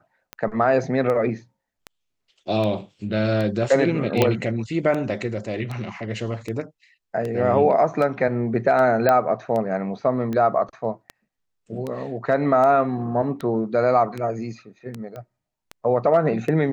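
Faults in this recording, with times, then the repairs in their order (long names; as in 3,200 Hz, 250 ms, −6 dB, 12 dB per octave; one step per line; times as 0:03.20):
scratch tick 78 rpm −17 dBFS
0:04.22: click −4 dBFS
0:09.09: click −7 dBFS
0:15.16: click −24 dBFS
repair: click removal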